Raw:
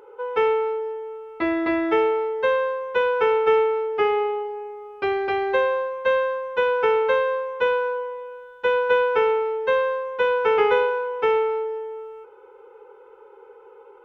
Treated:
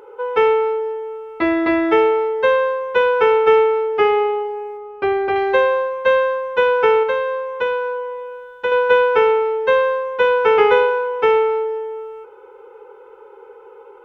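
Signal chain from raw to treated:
0:04.77–0:05.36: low-pass filter 1,800 Hz 6 dB per octave
0:07.03–0:08.72: downward compressor 1.5 to 1, threshold −31 dBFS, peak gain reduction 5.5 dB
level +5.5 dB

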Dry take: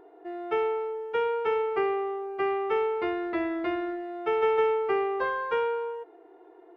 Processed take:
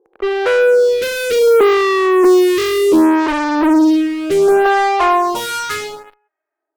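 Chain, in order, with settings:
source passing by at 0:01.80, 41 m/s, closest 27 metres
band-pass filter sweep 330 Hz → 2,000 Hz, 0:03.89–0:06.01
in parallel at −4 dB: fuzz pedal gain 51 dB, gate −60 dBFS
on the sum: phaser with staggered stages 0.67 Hz
level +8.5 dB

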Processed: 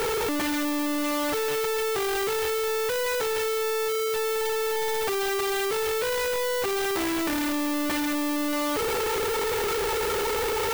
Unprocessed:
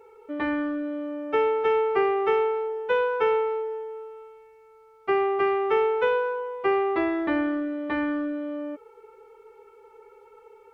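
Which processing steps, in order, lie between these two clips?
sign of each sample alone
background noise violet −39 dBFS

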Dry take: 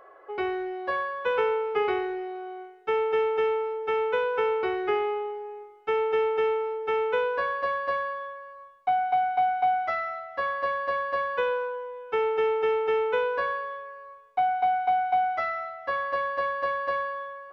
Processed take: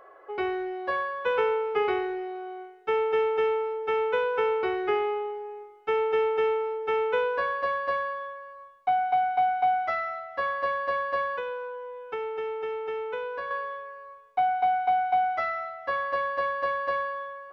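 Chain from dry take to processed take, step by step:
0:11.36–0:13.51: downward compressor 2 to 1, threshold −36 dBFS, peak gain reduction 8 dB

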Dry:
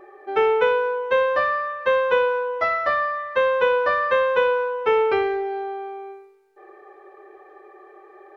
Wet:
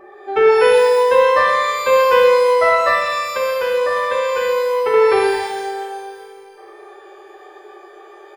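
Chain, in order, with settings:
0:02.94–0:04.94: downward compressor, threshold −23 dBFS, peak gain reduction 8.5 dB
repeating echo 418 ms, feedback 58%, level −23 dB
reverb with rising layers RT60 1.3 s, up +12 semitones, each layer −8 dB, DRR 0 dB
level +2.5 dB

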